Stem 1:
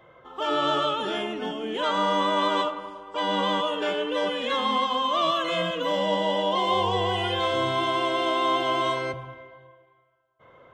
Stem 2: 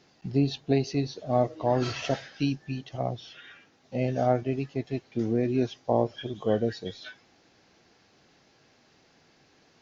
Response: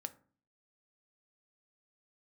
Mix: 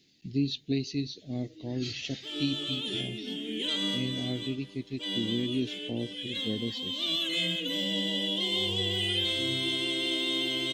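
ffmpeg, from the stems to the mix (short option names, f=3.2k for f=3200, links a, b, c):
-filter_complex "[0:a]adelay=1850,volume=-3.5dB[a];[1:a]volume=-6dB,asplit=2[b][c];[c]apad=whole_len=554975[d];[a][d]sidechaincompress=threshold=-34dB:ratio=8:attack=16:release=840[e];[e][b]amix=inputs=2:normalize=0,firequalizer=gain_entry='entry(140,0);entry(270,4);entry(610,-15);entry(1100,-24);entry(2000,0);entry(3800,10);entry(5500,2);entry(9100,12)':delay=0.05:min_phase=1"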